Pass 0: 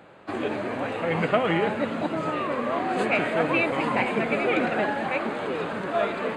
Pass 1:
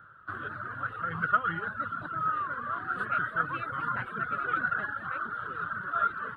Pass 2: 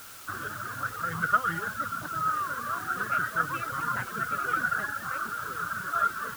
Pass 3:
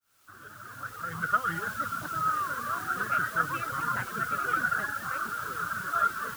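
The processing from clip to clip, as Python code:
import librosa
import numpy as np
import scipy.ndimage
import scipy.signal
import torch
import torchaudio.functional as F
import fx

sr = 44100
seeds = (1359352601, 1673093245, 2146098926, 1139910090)

y1 = fx.dereverb_blind(x, sr, rt60_s=0.85)
y1 = fx.curve_eq(y1, sr, hz=(120.0, 230.0, 840.0, 1400.0, 2300.0, 3200.0, 6900.0, 11000.0), db=(0, -17, -20, 11, -25, -12, -29, -10))
y2 = fx.quant_dither(y1, sr, seeds[0], bits=8, dither='triangular')
y2 = F.gain(torch.from_numpy(y2), 1.5).numpy()
y3 = fx.fade_in_head(y2, sr, length_s=1.74)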